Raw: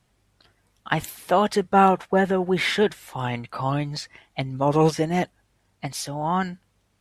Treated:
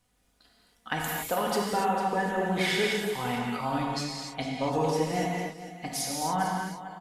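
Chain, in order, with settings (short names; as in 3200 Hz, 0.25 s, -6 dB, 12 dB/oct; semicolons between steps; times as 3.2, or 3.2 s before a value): high shelf 7000 Hz +8 dB; comb 4.1 ms, depth 50%; compressor, threshold -18 dBFS, peak gain reduction 8.5 dB; echo 0.451 s -13 dB; non-linear reverb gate 0.31 s flat, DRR -2.5 dB; gain -7.5 dB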